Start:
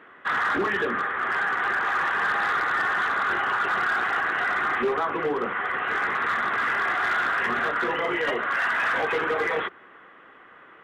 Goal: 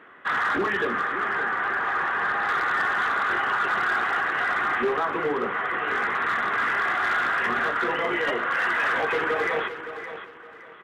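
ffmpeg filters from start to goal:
ffmpeg -i in.wav -filter_complex "[0:a]asettb=1/sr,asplit=3[link_01][link_02][link_03];[link_01]atrim=end=1.284[link_04];[link_02]atrim=start=1.28:end=2.49,asetpts=PTS-STARTPTS,afade=type=in:duration=0.004:curve=qsin,afade=type=out:start_time=1.206:duration=0.004:curve=qsin,highshelf=frequency=3700:gain=-10[link_05];[link_03]atrim=start=2.486[link_06];[link_04][link_05]acrossfade=duration=0.004:curve1=hsin:curve2=qsin[link_07];[link_07][link_06]acrossfade=duration=0.004:curve1=qsin:curve2=hsin,aecho=1:1:566|1132|1698:0.282|0.0789|0.0221" out.wav

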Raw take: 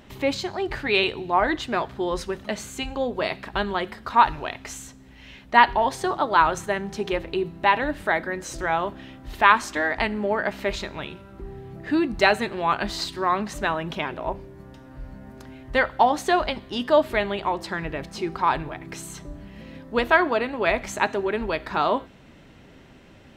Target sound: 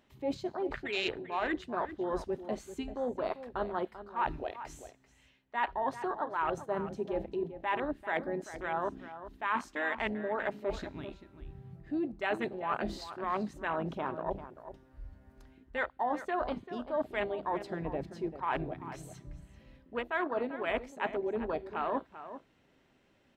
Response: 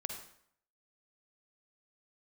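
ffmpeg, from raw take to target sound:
-filter_complex "[0:a]bandreject=frequency=50:width_type=h:width=6,bandreject=frequency=100:width_type=h:width=6,bandreject=frequency=150:width_type=h:width=6,bandreject=frequency=200:width_type=h:width=6,afwtdn=0.0501,lowshelf=frequency=190:gain=-6.5,areverse,acompressor=threshold=-31dB:ratio=5,areverse,asplit=2[link_01][link_02];[link_02]adelay=390.7,volume=-12dB,highshelf=frequency=4000:gain=-8.79[link_03];[link_01][link_03]amix=inputs=2:normalize=0"

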